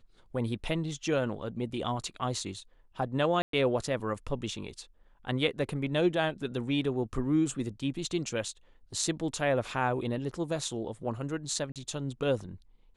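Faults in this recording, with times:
3.42–3.53 gap 0.113 s
11.72–11.76 gap 37 ms

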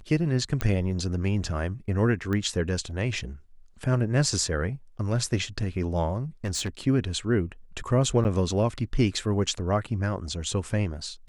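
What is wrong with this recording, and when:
0.61 pop -12 dBFS
2.33 pop -18 dBFS
6.44–6.87 clipped -25 dBFS
8.24–8.25 gap 9 ms

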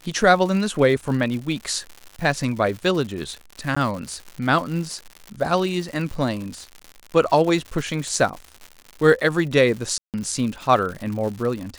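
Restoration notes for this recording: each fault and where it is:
crackle 150/s -29 dBFS
3.75–3.77 gap 15 ms
9.98–10.14 gap 0.158 s

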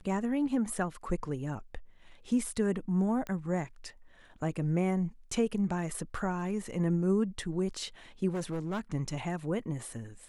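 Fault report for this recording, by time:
3.27 pop -25 dBFS
8.33–8.8 clipped -30 dBFS

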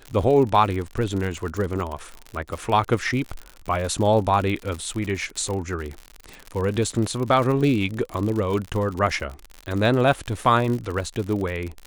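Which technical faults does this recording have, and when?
crackle 72/s -27 dBFS

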